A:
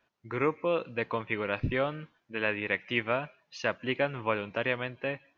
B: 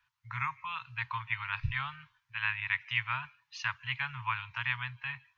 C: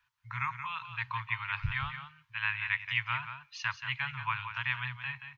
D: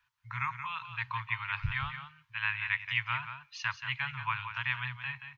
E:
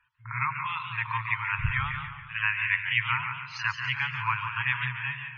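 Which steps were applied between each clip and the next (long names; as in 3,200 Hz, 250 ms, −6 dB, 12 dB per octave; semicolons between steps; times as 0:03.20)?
Chebyshev band-stop filter 130–940 Hz, order 4
single-tap delay 178 ms −9 dB
no processing that can be heard
backwards echo 54 ms −10.5 dB; spectral peaks only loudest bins 64; feedback echo with a swinging delay time 142 ms, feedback 54%, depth 129 cents, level −9 dB; level +5 dB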